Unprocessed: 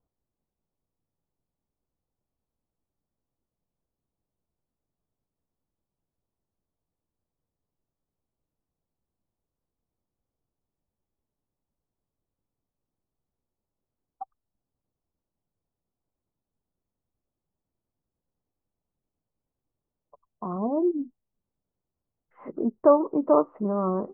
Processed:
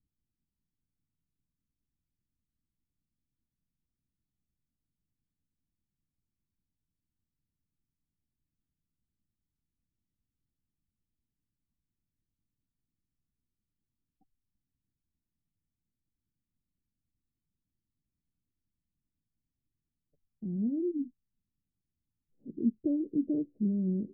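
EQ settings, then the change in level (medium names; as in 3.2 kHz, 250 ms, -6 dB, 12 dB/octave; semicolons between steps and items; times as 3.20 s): inverse Chebyshev low-pass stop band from 970 Hz, stop band 60 dB; 0.0 dB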